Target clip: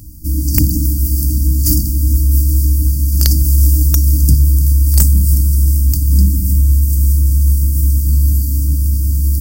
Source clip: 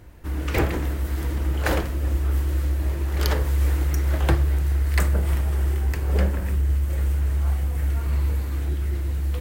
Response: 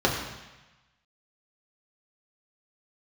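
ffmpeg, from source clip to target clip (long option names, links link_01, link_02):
-af "aemphasis=mode=production:type=50kf,afftfilt=real='re*(1-between(b*sr/4096,320,4500))':imag='im*(1-between(b*sr/4096,320,4500))':win_size=4096:overlap=0.75,aeval=exprs='1.88*sin(PI/2*5.01*val(0)/1.88)':channel_layout=same,volume=-6.5dB"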